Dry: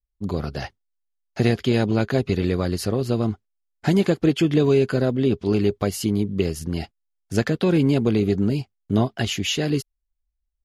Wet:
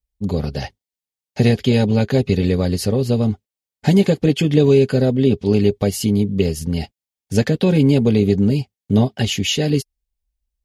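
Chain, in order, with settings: bell 1300 Hz -9.5 dB 0.77 oct; notch comb 340 Hz; gain +6 dB

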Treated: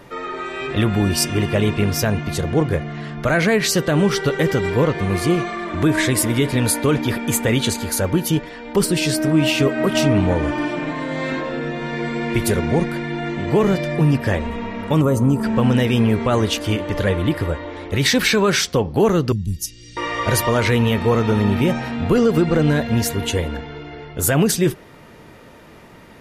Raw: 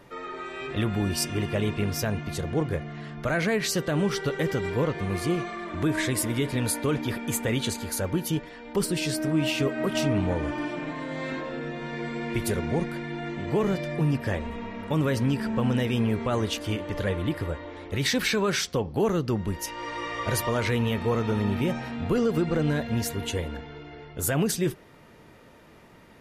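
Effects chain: 15.02–15.43 spectral gain 1400–6000 Hz -15 dB; 19.32–19.97 Chebyshev band-stop 140–5600 Hz, order 2; gain +8.5 dB

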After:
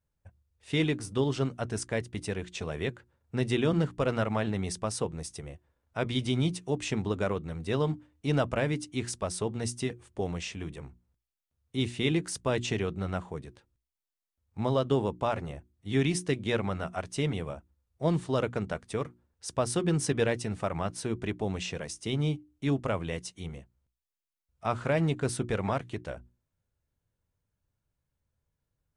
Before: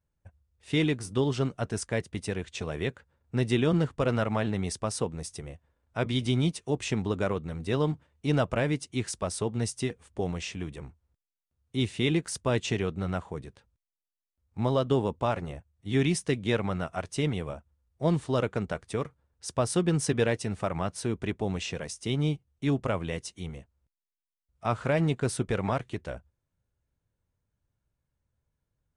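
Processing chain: notches 60/120/180/240/300/360 Hz; gain -1 dB

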